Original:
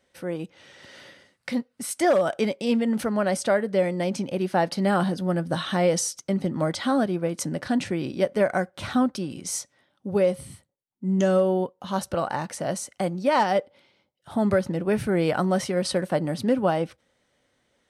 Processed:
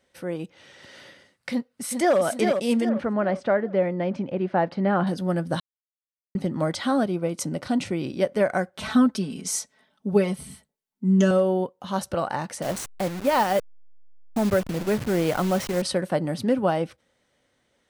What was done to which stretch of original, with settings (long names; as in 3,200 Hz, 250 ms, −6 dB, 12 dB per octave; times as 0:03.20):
0:01.50–0:02.19: delay throw 400 ms, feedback 45%, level −5 dB
0:02.89–0:05.07: low-pass filter 2,100 Hz
0:05.60–0:06.35: silence
0:07.03–0:08.04: notch filter 1,700 Hz, Q 5.3
0:08.77–0:11.31: comb filter 4.6 ms, depth 85%
0:12.62–0:15.82: hold until the input has moved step −29.5 dBFS